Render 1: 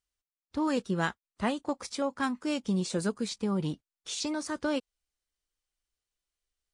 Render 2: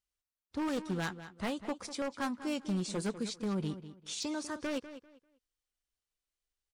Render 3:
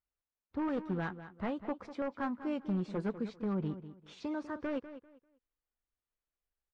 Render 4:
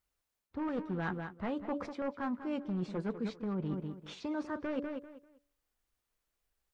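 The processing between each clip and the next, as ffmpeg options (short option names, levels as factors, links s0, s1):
-filter_complex "[0:a]aeval=exprs='0.0668*(abs(mod(val(0)/0.0668+3,4)-2)-1)':c=same,asplit=2[s0][s1];[s1]adelay=197,lowpass=f=4600:p=1,volume=0.237,asplit=2[s2][s3];[s3]adelay=197,lowpass=f=4600:p=1,volume=0.24,asplit=2[s4][s5];[s5]adelay=197,lowpass=f=4600:p=1,volume=0.24[s6];[s0][s2][s4][s6]amix=inputs=4:normalize=0,volume=0.631"
-af "lowpass=1700"
-af "bandreject=f=143.6:t=h:w=4,bandreject=f=287.2:t=h:w=4,bandreject=f=430.8:t=h:w=4,bandreject=f=574.4:t=h:w=4,areverse,acompressor=threshold=0.00794:ratio=6,areverse,volume=2.66"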